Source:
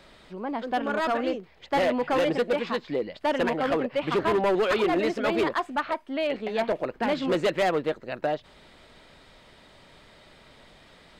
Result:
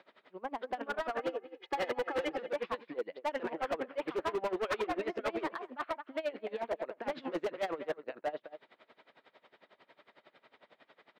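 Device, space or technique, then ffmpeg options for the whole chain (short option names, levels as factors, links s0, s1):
helicopter radio: -filter_complex "[0:a]asettb=1/sr,asplit=3[s0][s1][s2];[s0]atrim=end=1.194[s3];[s1]atrim=start=1.19:end=2.31,asetpts=PTS-STARTPTS,afade=t=in:d=0.004:c=qsin,afade=t=out:st=1.116:d=0.004:c=qsin,aecho=1:1:2.4:1,atrim=end_sample=49392[s4];[s2]atrim=start=2.306[s5];[s3][s4]acrossfade=d=0.004:c1=hsin:c2=qsin[s6];[s6][s5]acrossfade=d=0.004:c1=qsin:c2=hsin,highpass=350,lowpass=2600,asplit=2[s7][s8];[s8]adelay=215.7,volume=0.178,highshelf=f=4000:g=-4.85[s9];[s7][s9]amix=inputs=2:normalize=0,aeval=exprs='val(0)*pow(10,-22*(0.5-0.5*cos(2*PI*11*n/s))/20)':c=same,asoftclip=type=hard:threshold=0.0447,volume=0.841"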